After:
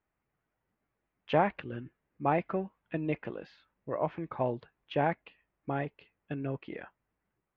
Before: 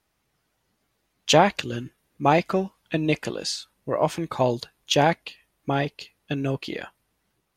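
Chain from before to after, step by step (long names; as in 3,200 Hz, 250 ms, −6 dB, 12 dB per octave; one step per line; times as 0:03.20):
low-pass filter 2,300 Hz 24 dB per octave
level −9 dB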